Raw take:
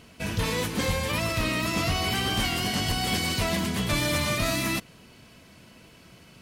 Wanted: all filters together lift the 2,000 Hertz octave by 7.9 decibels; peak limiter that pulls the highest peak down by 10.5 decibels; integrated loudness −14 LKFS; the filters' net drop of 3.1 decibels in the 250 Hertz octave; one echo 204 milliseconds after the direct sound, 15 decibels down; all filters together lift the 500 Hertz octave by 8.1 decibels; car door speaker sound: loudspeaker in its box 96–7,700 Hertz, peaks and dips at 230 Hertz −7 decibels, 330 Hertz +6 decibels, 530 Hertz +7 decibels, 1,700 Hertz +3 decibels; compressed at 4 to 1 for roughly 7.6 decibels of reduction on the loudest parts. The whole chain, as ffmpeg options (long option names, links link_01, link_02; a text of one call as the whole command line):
ffmpeg -i in.wav -af "equalizer=frequency=250:width_type=o:gain=-8.5,equalizer=frequency=500:width_type=o:gain=6,equalizer=frequency=2000:width_type=o:gain=8,acompressor=threshold=-29dB:ratio=4,alimiter=level_in=5.5dB:limit=-24dB:level=0:latency=1,volume=-5.5dB,highpass=96,equalizer=frequency=230:width_type=q:width=4:gain=-7,equalizer=frequency=330:width_type=q:width=4:gain=6,equalizer=frequency=530:width_type=q:width=4:gain=7,equalizer=frequency=1700:width_type=q:width=4:gain=3,lowpass=frequency=7700:width=0.5412,lowpass=frequency=7700:width=1.3066,aecho=1:1:204:0.178,volume=21.5dB" out.wav